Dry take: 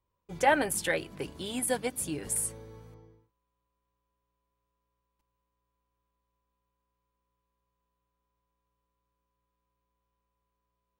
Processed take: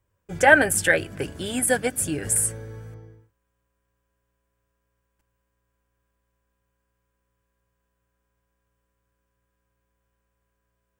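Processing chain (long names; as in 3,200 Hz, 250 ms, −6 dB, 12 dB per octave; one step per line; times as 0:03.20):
thirty-one-band graphic EQ 100 Hz +11 dB, 630 Hz +3 dB, 1,000 Hz −8 dB, 1,600 Hz +10 dB, 4,000 Hz −7 dB, 8,000 Hz +5 dB
level +7 dB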